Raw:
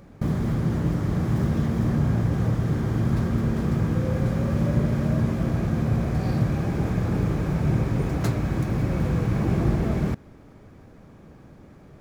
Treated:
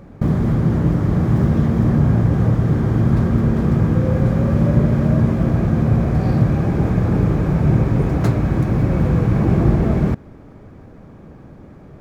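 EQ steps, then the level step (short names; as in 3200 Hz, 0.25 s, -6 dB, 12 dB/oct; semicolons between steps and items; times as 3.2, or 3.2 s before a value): high shelf 2400 Hz -9.5 dB; +7.5 dB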